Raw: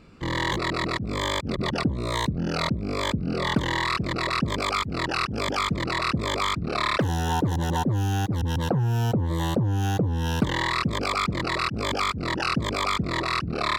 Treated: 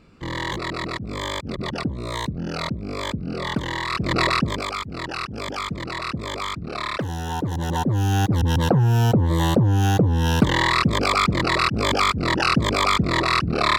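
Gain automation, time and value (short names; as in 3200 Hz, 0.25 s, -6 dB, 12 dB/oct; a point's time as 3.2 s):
3.87 s -1.5 dB
4.2 s +8 dB
4.73 s -3 dB
7.29 s -3 dB
8.26 s +6 dB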